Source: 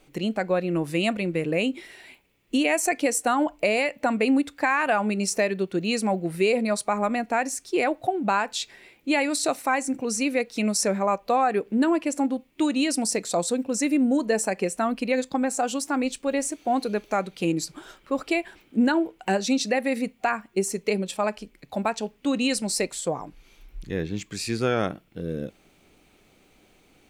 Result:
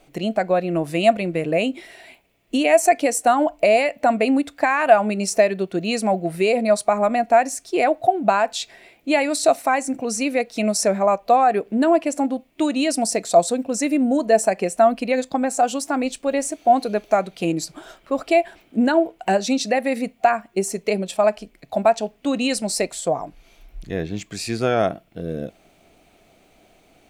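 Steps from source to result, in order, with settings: bell 670 Hz +13 dB 0.26 oct; gain +2 dB

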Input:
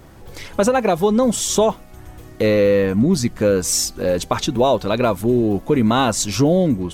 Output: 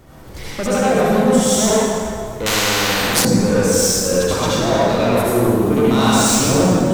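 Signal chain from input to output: 5.17–6.25 high shelf 3500 Hz +9 dB; soft clip -17 dBFS, distortion -10 dB; reverb RT60 2.2 s, pre-delay 63 ms, DRR -8.5 dB; 2.46–3.25 spectral compressor 4:1; gain -2.5 dB

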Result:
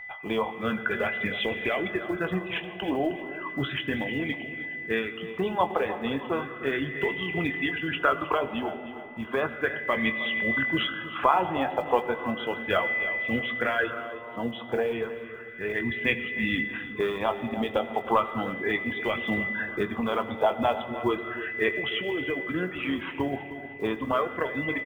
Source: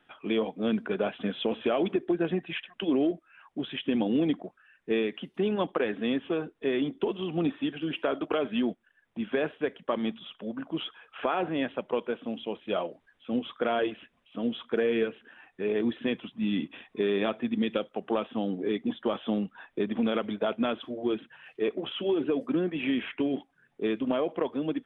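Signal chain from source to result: block floating point 7-bit; whine 2000 Hz -40 dBFS; reverb removal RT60 1.7 s; vocal rider 0.5 s; resonant low shelf 150 Hz +11.5 dB, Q 1.5; doubler 22 ms -10.5 dB; feedback echo 0.312 s, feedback 43%, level -14 dB; on a send at -11 dB: reverb RT60 2.9 s, pre-delay 65 ms; on the sum: LFO bell 0.34 Hz 800–2200 Hz +15 dB

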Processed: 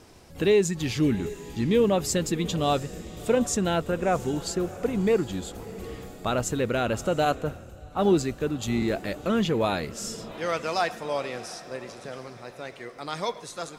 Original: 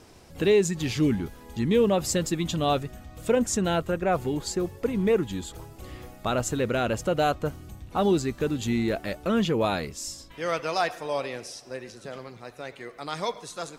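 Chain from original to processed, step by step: diffused feedback echo 0.7 s, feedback 47%, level -16 dB; 7.25–8.82 three-band expander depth 70%

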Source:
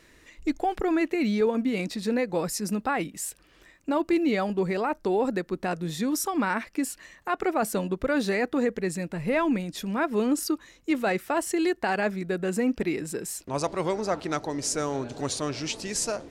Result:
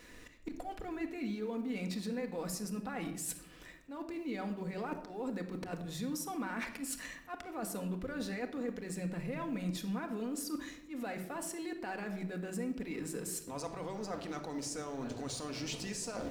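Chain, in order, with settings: G.711 law mismatch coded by A; limiter -26.5 dBFS, peak gain reduction 11 dB; auto swell 0.145 s; reverse; compressor 16:1, threshold -46 dBFS, peak gain reduction 17 dB; reverse; shoebox room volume 2500 m³, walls furnished, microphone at 1.9 m; gain +8 dB

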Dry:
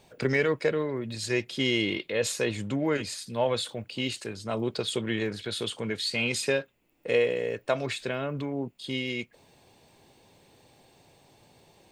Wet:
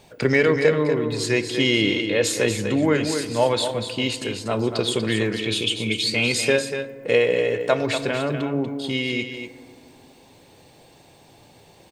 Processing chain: 5.38–6.03 EQ curve 280 Hz 0 dB, 1700 Hz -21 dB, 2400 Hz +14 dB, 4300 Hz -2 dB, 6200 Hz +4 dB, 9100 Hz -1 dB; echo 0.241 s -8 dB; FDN reverb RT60 2.3 s, low-frequency decay 1.25×, high-frequency decay 0.3×, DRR 12 dB; gain +6.5 dB

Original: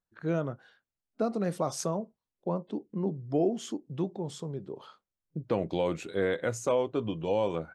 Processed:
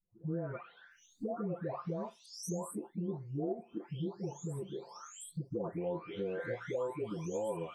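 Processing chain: spectral delay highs late, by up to 0.91 s; bell 4300 Hz -11 dB 1 oct; compressor 2.5:1, threshold -49 dBFS, peak gain reduction 17 dB; gain +7.5 dB

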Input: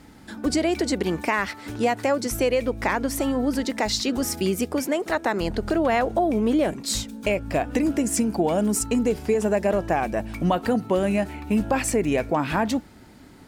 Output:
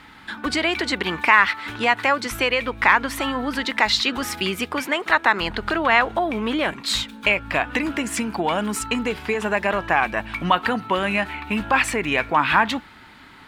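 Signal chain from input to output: band shelf 1900 Hz +14.5 dB 2.5 oct; gain -3.5 dB

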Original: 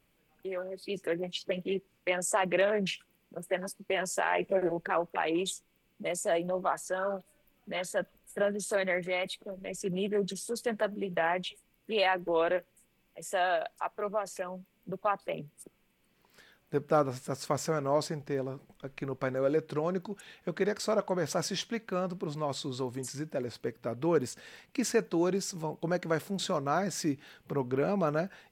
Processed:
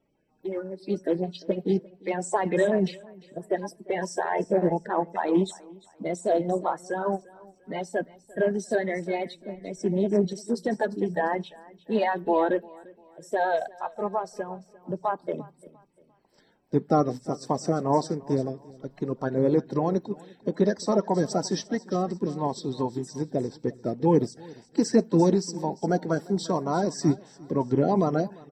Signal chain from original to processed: bin magnitudes rounded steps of 30 dB; in parallel at +2 dB: limiter -25 dBFS, peak gain reduction 10.5 dB; 23.93–24.35 on the sum: notch 1400 Hz, Q 5.1; feedback echo 0.348 s, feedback 36%, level -16 dB; reverb RT60 0.45 s, pre-delay 3 ms, DRR 21.5 dB; upward expander 1.5:1, over -28 dBFS; gain -7 dB

